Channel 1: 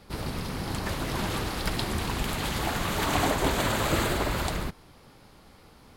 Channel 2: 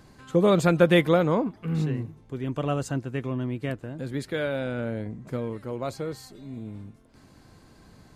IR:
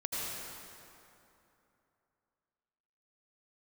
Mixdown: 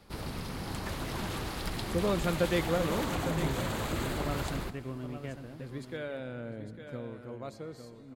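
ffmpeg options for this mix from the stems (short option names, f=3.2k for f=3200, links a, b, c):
-filter_complex "[0:a]acrossover=split=350[a][b];[b]acompressor=threshold=-29dB:ratio=4[c];[a][c]amix=inputs=2:normalize=0,asoftclip=type=tanh:threshold=-18.5dB,volume=-5.5dB,asplit=3[d][e][f];[e]volume=-21dB[g];[f]volume=-23.5dB[h];[1:a]highshelf=f=9.6k:g=-5.5,adelay=1600,volume=-11dB,asplit=3[i][j][k];[j]volume=-18.5dB[l];[k]volume=-8.5dB[m];[2:a]atrim=start_sample=2205[n];[g][l]amix=inputs=2:normalize=0[o];[o][n]afir=irnorm=-1:irlink=0[p];[h][m]amix=inputs=2:normalize=0,aecho=0:1:854:1[q];[d][i][p][q]amix=inputs=4:normalize=0"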